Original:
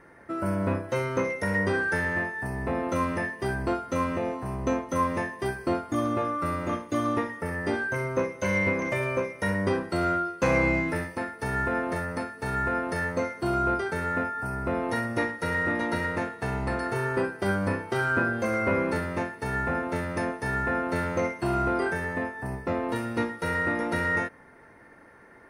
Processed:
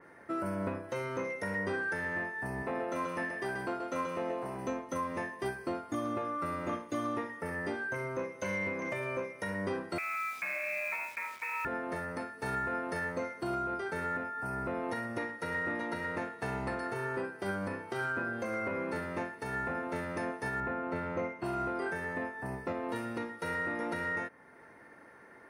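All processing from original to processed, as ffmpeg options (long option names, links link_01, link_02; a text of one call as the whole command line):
ffmpeg -i in.wav -filter_complex "[0:a]asettb=1/sr,asplit=3[link_01][link_02][link_03];[link_01]atrim=end=2.624[link_04];[link_02]atrim=start=2.62:end=4.68,asetpts=PTS-STARTPTS,afade=type=in:duration=0.004:curve=qsin,afade=type=out:start_time=2.056:duration=0.004:curve=qsin,highpass=frequency=260:poles=1,aecho=1:1:132:0.501,atrim=end_sample=90846[link_05];[link_03]atrim=start=4.676[link_06];[link_04][link_05]acrossfade=duration=0.004:curve1=hsin:curve2=qsin[link_07];[link_07][link_06]acrossfade=duration=0.004:curve1=qsin:curve2=hsin,asettb=1/sr,asplit=3[link_08][link_09][link_10];[link_08]atrim=end=9.984[link_11];[link_09]atrim=start=9.98:end=11.65,asetpts=PTS-STARTPTS,afade=type=in:duration=0.004:curve=qsin,afade=type=out:start_time=1.666:duration=0.004:curve=qsin,lowpass=frequency=2300:width_type=q:width=0.5098,lowpass=frequency=2300:width_type=q:width=0.6013,lowpass=frequency=2300:width_type=q:width=0.9,lowpass=frequency=2300:width_type=q:width=2.563,afreqshift=-2700,acompressor=threshold=-27dB:ratio=6:attack=3.2:release=140:knee=1:detection=peak,acrusher=bits=8:dc=4:mix=0:aa=0.000001[link_12];[link_10]atrim=start=11.646[link_13];[link_11][link_12]acrossfade=duration=0.004:curve1=hsin:curve2=qsin[link_14];[link_14][link_13]acrossfade=duration=0.004:curve1=qsin:curve2=hsin,asettb=1/sr,asplit=3[link_15][link_16][link_17];[link_15]atrim=end=20.604[link_18];[link_16]atrim=start=20.6:end=21.44,asetpts=PTS-STARTPTS,afade=type=in:duration=0.004:curve=qsin,afade=type=out:start_time=0.836:duration=0.004:curve=qsin,bass=frequency=250:gain=2,treble=frequency=4000:gain=-13,bandreject=frequency=1700:width=9.9[link_19];[link_17]atrim=start=21.436[link_20];[link_18][link_19]acrossfade=duration=0.004:curve1=hsin:curve2=qsin[link_21];[link_21][link_20]acrossfade=duration=0.004:curve1=qsin:curve2=hsin,highpass=frequency=170:poles=1,alimiter=limit=-23.5dB:level=0:latency=1:release=432,adynamicequalizer=threshold=0.00501:dfrequency=3300:dqfactor=0.7:tfrequency=3300:tqfactor=0.7:attack=5:release=100:ratio=0.375:range=1.5:mode=cutabove:tftype=highshelf,volume=-2dB" out.wav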